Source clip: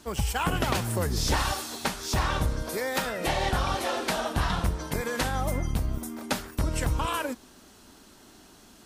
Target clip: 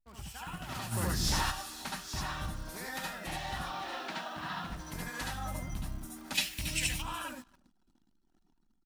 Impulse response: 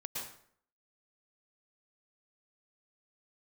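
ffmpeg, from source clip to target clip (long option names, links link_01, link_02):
-filter_complex "[0:a]asettb=1/sr,asplit=3[link_01][link_02][link_03];[link_01]atrim=end=3.624[link_04];[link_02]atrim=start=3.62:end=4.7,asetpts=PTS-STARTPTS,afade=type=in:duration=0.004:curve=qsin,afade=type=out:start_time=1.076:duration=0.004:curve=qsin,highpass=200,lowpass=4300[link_05];[link_03]atrim=start=4.696[link_06];[link_04][link_05]acrossfade=duration=0.004:curve1=hsin:curve2=qsin[link_07];[link_07][link_06]acrossfade=duration=0.004:curve1=qsin:curve2=hsin,aecho=1:1:276|552:0.0668|0.0194[link_08];[1:a]atrim=start_sample=2205,afade=type=out:start_time=0.2:duration=0.01,atrim=end_sample=9261,asetrate=70560,aresample=44100[link_09];[link_08][link_09]afir=irnorm=-1:irlink=0,alimiter=limit=-23.5dB:level=0:latency=1:release=387,dynaudnorm=framelen=100:gausssize=13:maxgain=6.5dB,acrusher=bits=9:dc=4:mix=0:aa=0.000001,asplit=3[link_10][link_11][link_12];[link_10]afade=type=out:start_time=0.91:duration=0.02[link_13];[link_11]acontrast=85,afade=type=in:start_time=0.91:duration=0.02,afade=type=out:start_time=1.5:duration=0.02[link_14];[link_12]afade=type=in:start_time=1.5:duration=0.02[link_15];[link_13][link_14][link_15]amix=inputs=3:normalize=0,asplit=3[link_16][link_17][link_18];[link_16]afade=type=out:start_time=6.34:duration=0.02[link_19];[link_17]highshelf=frequency=1800:width_type=q:width=3:gain=10.5,afade=type=in:start_time=6.34:duration=0.02,afade=type=out:start_time=7.01:duration=0.02[link_20];[link_18]afade=type=in:start_time=7.01:duration=0.02[link_21];[link_19][link_20][link_21]amix=inputs=3:normalize=0,anlmdn=0.0398,equalizer=frequency=450:width=1.8:gain=-11,volume=-8.5dB"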